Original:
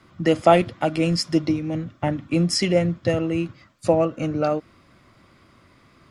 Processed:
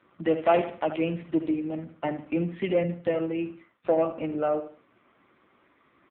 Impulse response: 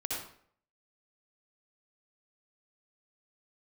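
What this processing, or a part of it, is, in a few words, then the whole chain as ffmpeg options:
telephone: -filter_complex "[0:a]aecho=1:1:75|150|225:0.266|0.0878|0.029,asettb=1/sr,asplit=3[link_01][link_02][link_03];[link_01]atrim=end=2.734[link_04];[link_02]atrim=start=2.73:end=3.35,asetpts=PTS-STARTPTS,afade=type=in:duration=0.004:curve=qsin,afade=type=out:start_time=0.616:duration=0.004:curve=qsin,adynamicequalizer=threshold=0.0112:dfrequency=120:dqfactor=3.1:tfrequency=120:tqfactor=3.1:attack=5:release=100:ratio=0.375:range=2.5:mode=boostabove:tftype=bell[link_05];[link_03]atrim=start=3.346[link_06];[link_04][link_05]acrossfade=duration=0.004:curve1=hsin:curve2=qsin[link_07];[link_07][link_06]acrossfade=duration=0.004:curve1=qsin:curve2=hsin,highpass=250,lowpass=3500,asoftclip=type=tanh:threshold=-10.5dB,volume=-2.5dB" -ar 8000 -c:a libopencore_amrnb -b:a 5900

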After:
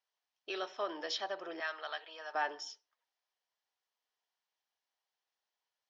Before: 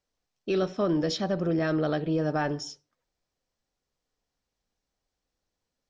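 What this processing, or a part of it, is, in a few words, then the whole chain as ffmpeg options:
phone speaker on a table: -filter_complex "[0:a]highpass=frequency=490:width=0.5412,highpass=frequency=490:width=1.3066,equalizer=frequency=520:width_type=q:width=4:gain=-8,equalizer=frequency=930:width_type=q:width=4:gain=5,equalizer=frequency=1800:width_type=q:width=4:gain=4,equalizer=frequency=3100:width_type=q:width=4:gain=6,lowpass=frequency=6400:width=0.5412,lowpass=frequency=6400:width=1.3066,asettb=1/sr,asplit=3[link_01][link_02][link_03];[link_01]atrim=end=1.604[link_04];[link_02]atrim=start=1.6:end=2.35,asetpts=PTS-STARTPTS,afade=type=in:duration=0.004:curve=qsin,afade=type=out:start_time=0.746:duration=0.004:curve=qsin,highpass=930[link_05];[link_03]atrim=start=2.346[link_06];[link_04][link_05]acrossfade=duration=0.004:curve1=hsin:curve2=qsin[link_07];[link_07][link_06]acrossfade=duration=0.004:curve1=qsin:curve2=hsin,volume=-5.5dB"

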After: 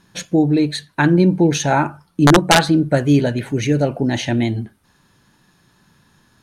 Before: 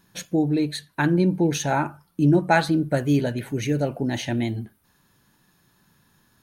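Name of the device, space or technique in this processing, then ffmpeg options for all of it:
overflowing digital effects unit: -af "aeval=exprs='(mod(2.82*val(0)+1,2)-1)/2.82':channel_layout=same,lowpass=8600,volume=6.5dB"

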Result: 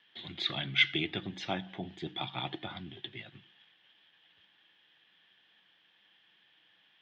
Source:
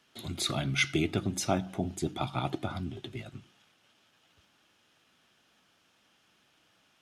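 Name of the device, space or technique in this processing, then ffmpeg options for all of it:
kitchen radio: -af "highpass=180,equalizer=frequency=250:width_type=q:width=4:gain=-10,equalizer=frequency=400:width_type=q:width=4:gain=-5,equalizer=frequency=620:width_type=q:width=4:gain=-7,equalizer=frequency=1300:width_type=q:width=4:gain=-8,equalizer=frequency=1800:width_type=q:width=4:gain=10,equalizer=frequency=3300:width_type=q:width=4:gain=10,lowpass=frequency=3800:width=0.5412,lowpass=frequency=3800:width=1.3066,volume=-2dB"

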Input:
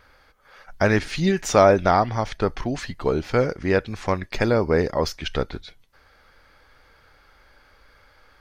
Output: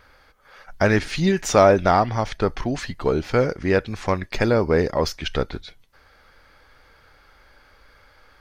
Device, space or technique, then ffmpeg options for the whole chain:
parallel distortion: -filter_complex "[0:a]asplit=2[link_01][link_02];[link_02]asoftclip=type=hard:threshold=-19dB,volume=-14dB[link_03];[link_01][link_03]amix=inputs=2:normalize=0"

